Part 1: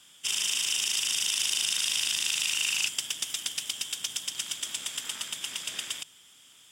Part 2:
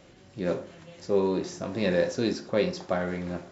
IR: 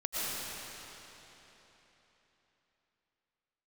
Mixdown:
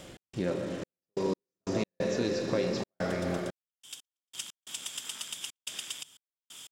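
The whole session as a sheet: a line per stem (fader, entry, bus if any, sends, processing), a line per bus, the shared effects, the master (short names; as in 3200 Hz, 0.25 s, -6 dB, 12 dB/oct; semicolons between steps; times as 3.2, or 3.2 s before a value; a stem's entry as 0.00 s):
2.73 s -16 dB -> 2.97 s -6.5 dB, 0.00 s, no send, bell 1900 Hz -3.5 dB; three-band squash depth 70%; auto duck -14 dB, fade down 0.40 s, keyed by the second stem
+2.5 dB, 0.00 s, send -6.5 dB, compressor 4:1, threshold -34 dBFS, peak gain reduction 12.5 dB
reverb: on, RT60 3.8 s, pre-delay 75 ms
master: step gate "x.xxx..x..x.xxxx" 90 bpm -60 dB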